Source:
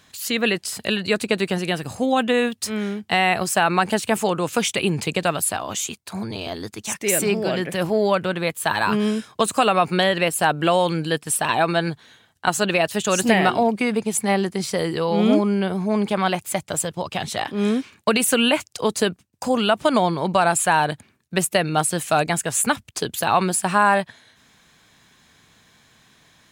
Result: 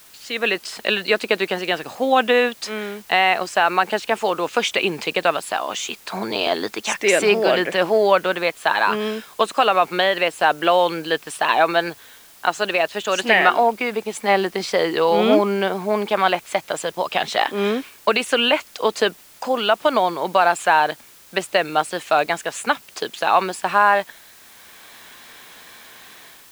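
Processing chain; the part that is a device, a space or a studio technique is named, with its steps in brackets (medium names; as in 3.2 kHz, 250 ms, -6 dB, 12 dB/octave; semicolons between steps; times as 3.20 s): dictaphone (band-pass 400–4200 Hz; level rider gain up to 15.5 dB; wow and flutter 27 cents; white noise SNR 27 dB); 13.15–13.71 s: peaking EQ 3.4 kHz -> 1 kHz +6 dB 1.4 oct; trim -2.5 dB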